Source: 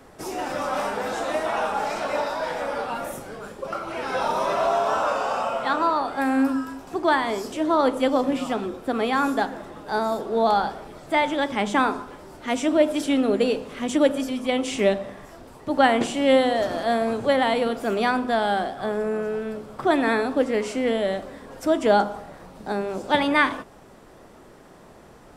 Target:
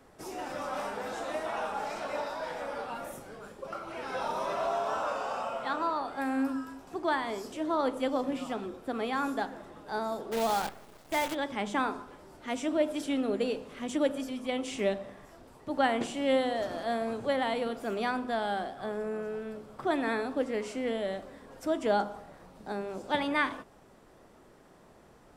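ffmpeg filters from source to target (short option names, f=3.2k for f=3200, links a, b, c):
-filter_complex "[0:a]asplit=3[a][b][c];[a]afade=t=out:st=10.31:d=0.02[d];[b]acrusher=bits=5:dc=4:mix=0:aa=0.000001,afade=t=in:st=10.31:d=0.02,afade=t=out:st=11.33:d=0.02[e];[c]afade=t=in:st=11.33:d=0.02[f];[d][e][f]amix=inputs=3:normalize=0,volume=-9dB"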